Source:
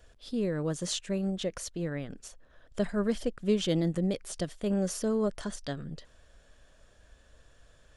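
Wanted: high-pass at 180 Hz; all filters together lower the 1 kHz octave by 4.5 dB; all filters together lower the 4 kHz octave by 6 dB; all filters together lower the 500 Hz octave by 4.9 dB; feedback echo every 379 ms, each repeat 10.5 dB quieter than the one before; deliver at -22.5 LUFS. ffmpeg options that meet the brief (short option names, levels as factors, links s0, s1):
-af "highpass=180,equalizer=f=500:t=o:g=-5,equalizer=f=1000:t=o:g=-4,equalizer=f=4000:t=o:g=-7.5,aecho=1:1:379|758|1137:0.299|0.0896|0.0269,volume=4.22"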